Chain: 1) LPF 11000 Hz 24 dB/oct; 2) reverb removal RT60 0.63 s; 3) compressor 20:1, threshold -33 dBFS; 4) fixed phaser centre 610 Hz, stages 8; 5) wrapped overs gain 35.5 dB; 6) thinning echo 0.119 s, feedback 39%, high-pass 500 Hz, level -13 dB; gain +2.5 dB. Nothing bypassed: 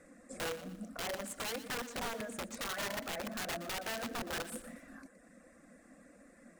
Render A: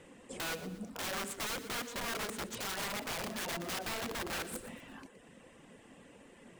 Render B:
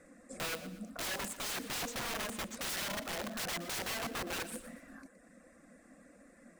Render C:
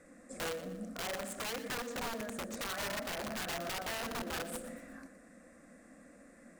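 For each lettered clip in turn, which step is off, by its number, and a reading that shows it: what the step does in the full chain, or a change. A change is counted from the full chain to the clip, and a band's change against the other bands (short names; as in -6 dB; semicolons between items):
4, 500 Hz band -2.5 dB; 3, mean gain reduction 2.5 dB; 2, momentary loudness spread change +5 LU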